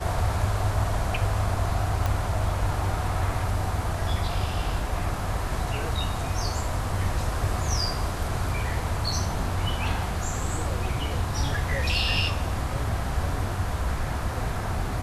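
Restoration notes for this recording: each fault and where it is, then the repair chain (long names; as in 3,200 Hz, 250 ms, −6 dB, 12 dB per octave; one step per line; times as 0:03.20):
0:02.06: click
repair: click removal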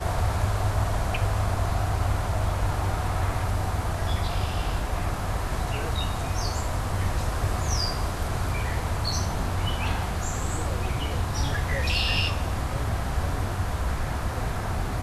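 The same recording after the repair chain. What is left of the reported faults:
none of them is left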